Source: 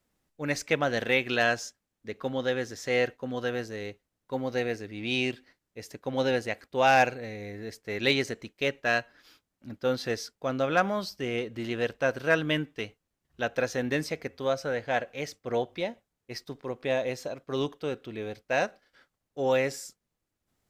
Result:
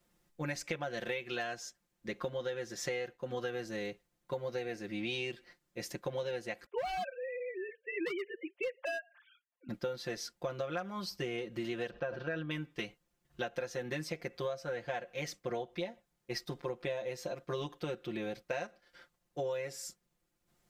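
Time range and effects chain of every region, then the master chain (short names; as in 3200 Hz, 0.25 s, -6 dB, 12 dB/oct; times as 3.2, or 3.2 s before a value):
6.66–9.69 sine-wave speech + hard clip -22.5 dBFS
11.9–12.51 air absorption 230 m + notch 2100 Hz, Q 7.8 + sustainer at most 82 dB/s
whole clip: comb 5.7 ms, depth 97%; compressor 12:1, threshold -34 dBFS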